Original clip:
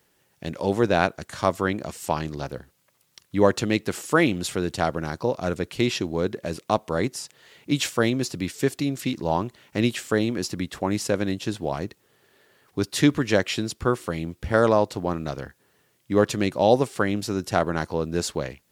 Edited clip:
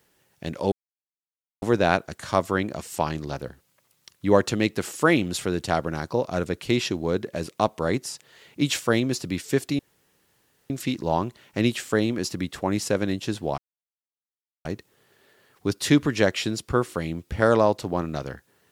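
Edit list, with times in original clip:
0.72 insert silence 0.90 s
8.89 insert room tone 0.91 s
11.77 insert silence 1.07 s

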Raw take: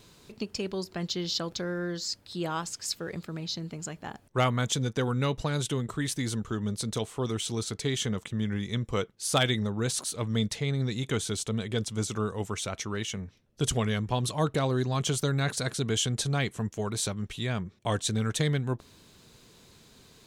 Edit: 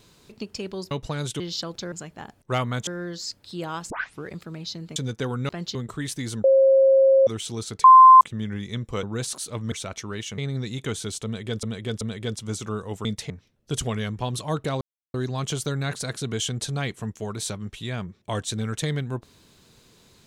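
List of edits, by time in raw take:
0.91–1.17 swap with 5.26–5.75
2.72 tape start 0.35 s
3.78–4.73 move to 1.69
6.44–7.27 bleep 537 Hz -12.5 dBFS
7.84–8.21 bleep 1040 Hz -6 dBFS
9.03–9.69 cut
10.38–10.63 swap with 12.54–13.2
11.5–11.88 loop, 3 plays
14.71 insert silence 0.33 s

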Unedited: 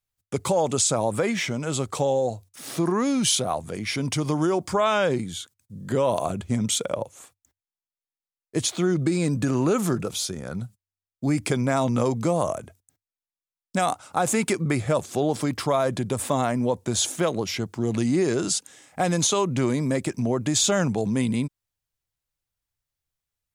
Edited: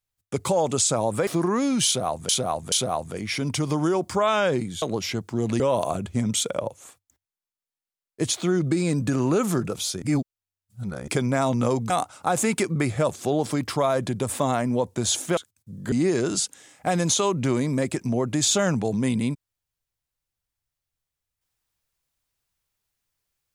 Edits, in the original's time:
1.27–2.71 cut
3.3–3.73 loop, 3 plays
5.4–5.95 swap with 17.27–18.05
10.37–11.43 reverse
12.25–13.8 cut

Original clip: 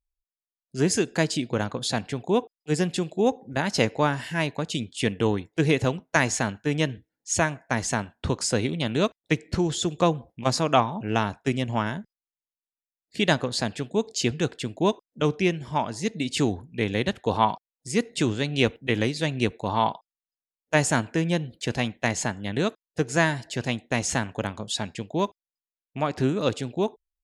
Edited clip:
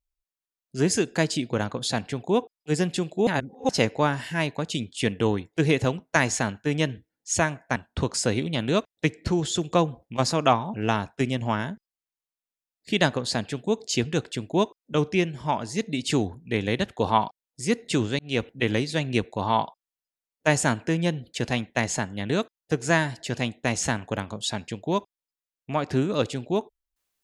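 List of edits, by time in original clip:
3.27–3.69 reverse
7.76–8.03 cut
18.46–18.86 fade in equal-power

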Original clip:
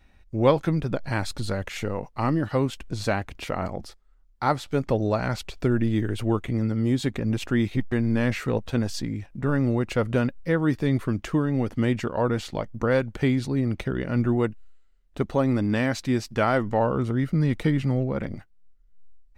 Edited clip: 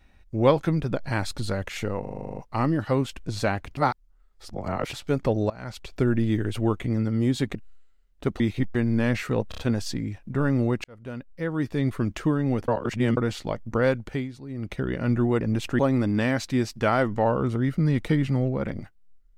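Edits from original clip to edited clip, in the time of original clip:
2.01 stutter 0.04 s, 10 plays
3.41–4.57 reverse
5.14–5.66 fade in, from -23 dB
7.19–7.57 swap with 14.49–15.34
8.66 stutter 0.03 s, 4 plays
9.92–11.13 fade in linear
11.76–12.25 reverse
13.02–13.93 dip -13.5 dB, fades 0.36 s

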